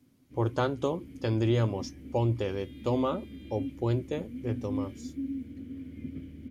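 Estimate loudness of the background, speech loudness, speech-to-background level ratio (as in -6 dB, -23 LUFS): -40.5 LUFS, -31.5 LUFS, 9.0 dB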